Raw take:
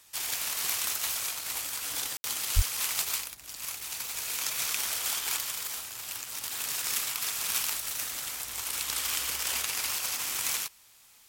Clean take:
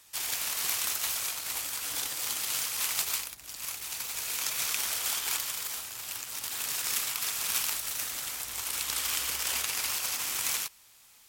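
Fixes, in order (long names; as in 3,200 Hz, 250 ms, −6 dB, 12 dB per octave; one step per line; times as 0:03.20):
clipped peaks rebuilt −14 dBFS
0:02.55–0:02.67: high-pass filter 140 Hz 24 dB per octave
ambience match 0:02.17–0:02.24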